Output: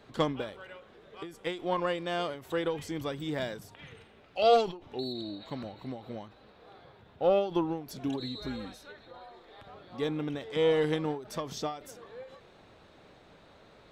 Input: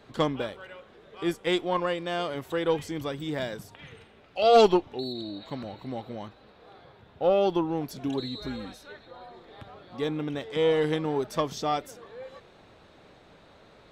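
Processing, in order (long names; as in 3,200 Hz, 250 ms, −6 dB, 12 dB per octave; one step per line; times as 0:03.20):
0:09.19–0:09.67: parametric band 150 Hz −8.5 dB 2.1 octaves
every ending faded ahead of time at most 120 dB per second
level −2 dB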